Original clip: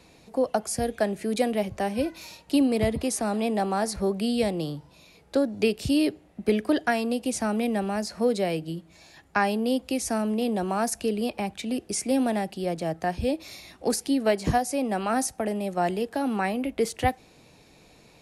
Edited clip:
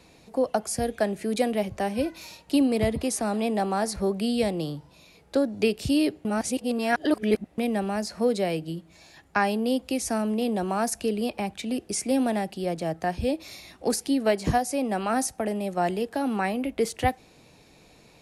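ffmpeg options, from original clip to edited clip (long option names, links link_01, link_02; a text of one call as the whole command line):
ffmpeg -i in.wav -filter_complex "[0:a]asplit=3[link_01][link_02][link_03];[link_01]atrim=end=6.252[link_04];[link_02]atrim=start=6.248:end=7.582,asetpts=PTS-STARTPTS,areverse[link_05];[link_03]atrim=start=7.578[link_06];[link_04][link_05]acrossfade=duration=0.004:curve1=hsin:curve2=hsin[link_07];[link_07][link_06]acrossfade=duration=0.004:curve1=hsin:curve2=hsin" out.wav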